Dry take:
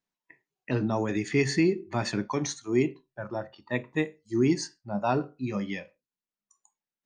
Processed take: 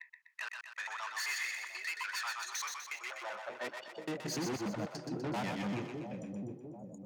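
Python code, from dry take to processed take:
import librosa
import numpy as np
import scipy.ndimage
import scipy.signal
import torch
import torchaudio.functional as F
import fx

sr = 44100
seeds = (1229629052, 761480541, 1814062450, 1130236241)

y = fx.block_reorder(x, sr, ms=97.0, group=4)
y = fx.filter_sweep_highpass(y, sr, from_hz=1200.0, to_hz=110.0, start_s=2.97, end_s=3.48, q=1.1)
y = fx.tube_stage(y, sr, drive_db=37.0, bias=0.4)
y = fx.filter_sweep_highpass(y, sr, from_hz=1200.0, to_hz=130.0, start_s=3.11, end_s=4.3, q=1.2)
y = fx.echo_split(y, sr, split_hz=640.0, low_ms=700, high_ms=124, feedback_pct=52, wet_db=-4.5)
y = F.gain(torch.from_numpy(y), 1.0).numpy()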